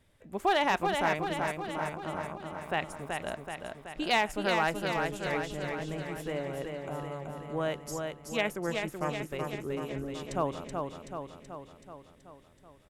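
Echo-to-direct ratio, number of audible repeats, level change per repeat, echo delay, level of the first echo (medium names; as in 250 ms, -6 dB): -2.5 dB, 7, -4.5 dB, 378 ms, -4.5 dB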